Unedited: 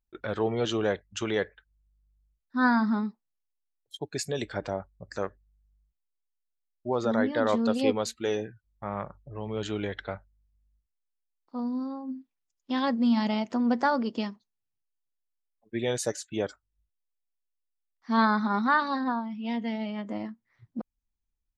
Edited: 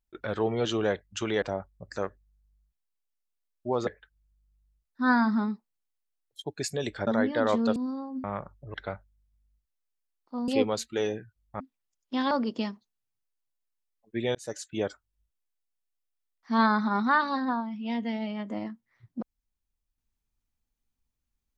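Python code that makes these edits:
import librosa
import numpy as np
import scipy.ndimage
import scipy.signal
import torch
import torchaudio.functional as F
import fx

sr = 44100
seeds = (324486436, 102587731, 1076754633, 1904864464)

y = fx.edit(x, sr, fx.move(start_s=4.62, length_s=2.45, to_s=1.42),
    fx.swap(start_s=7.76, length_s=1.12, other_s=11.69, other_length_s=0.48),
    fx.cut(start_s=9.38, length_s=0.57),
    fx.cut(start_s=12.88, length_s=1.02),
    fx.fade_in_span(start_s=15.94, length_s=0.31), tone=tone)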